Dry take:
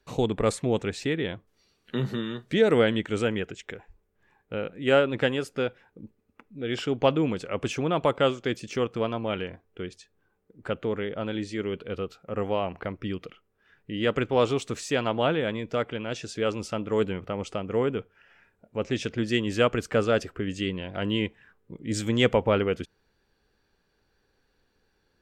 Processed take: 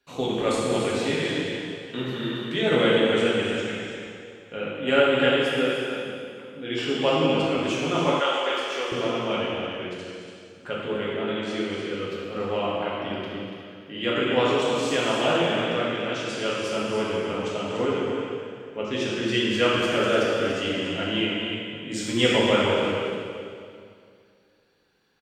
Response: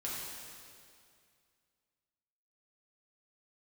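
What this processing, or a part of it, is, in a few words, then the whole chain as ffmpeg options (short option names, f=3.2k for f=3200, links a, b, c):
stadium PA: -filter_complex "[0:a]highpass=f=170:p=1,equalizer=f=3k:t=o:w=0.92:g=5,aecho=1:1:242|288.6:0.251|0.398[a];[1:a]atrim=start_sample=2205[b];[a][b]afir=irnorm=-1:irlink=0,asettb=1/sr,asplit=3[c][d][e];[c]atrim=end=8.204[f];[d]atrim=start=8.2:end=8.92,asetpts=PTS-STARTPTS,afade=t=in:d=0.004:c=qsin,afade=t=out:st=0.716:d=0.004:c=qsin,highpass=570[g];[e]atrim=start=8.916[h];[f][g]acrossfade=d=0.004:c1=hsin:c2=qsin[i];[i][h]acrossfade=d=0.004:c1=qsin:c2=hsin"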